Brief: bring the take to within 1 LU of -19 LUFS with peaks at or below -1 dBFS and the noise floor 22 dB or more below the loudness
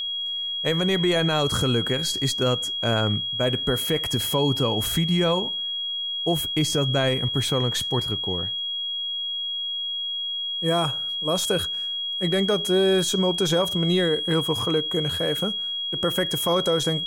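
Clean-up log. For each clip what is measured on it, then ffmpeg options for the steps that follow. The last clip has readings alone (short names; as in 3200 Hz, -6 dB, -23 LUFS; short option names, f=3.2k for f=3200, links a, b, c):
steady tone 3300 Hz; tone level -26 dBFS; loudness -23.0 LUFS; peak -12.0 dBFS; loudness target -19.0 LUFS
-> -af "bandreject=f=3.3k:w=30"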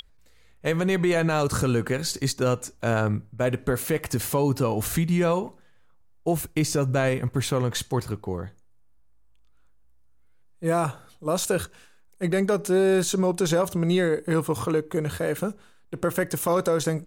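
steady tone none; loudness -25.0 LUFS; peak -13.5 dBFS; loudness target -19.0 LUFS
-> -af "volume=6dB"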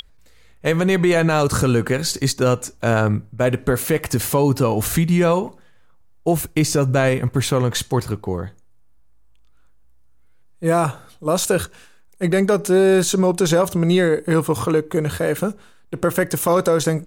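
loudness -19.0 LUFS; peak -7.5 dBFS; noise floor -48 dBFS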